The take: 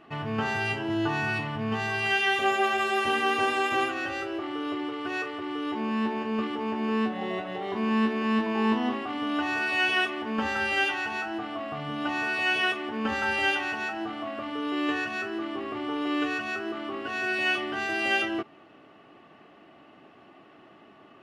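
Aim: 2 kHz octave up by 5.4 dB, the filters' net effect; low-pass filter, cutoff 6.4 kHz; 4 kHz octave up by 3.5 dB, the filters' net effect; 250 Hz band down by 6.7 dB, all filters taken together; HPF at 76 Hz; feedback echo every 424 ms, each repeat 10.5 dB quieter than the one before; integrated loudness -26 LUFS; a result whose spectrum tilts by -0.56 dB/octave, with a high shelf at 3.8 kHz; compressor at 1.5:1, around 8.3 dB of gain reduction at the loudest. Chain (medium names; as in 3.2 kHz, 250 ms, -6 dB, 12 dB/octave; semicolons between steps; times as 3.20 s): high-pass 76 Hz; low-pass 6.4 kHz; peaking EQ 250 Hz -8.5 dB; peaking EQ 2 kHz +7.5 dB; treble shelf 3.8 kHz -4.5 dB; peaking EQ 4 kHz +4 dB; compression 1.5:1, threshold -41 dBFS; feedback delay 424 ms, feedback 30%, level -10.5 dB; trim +5.5 dB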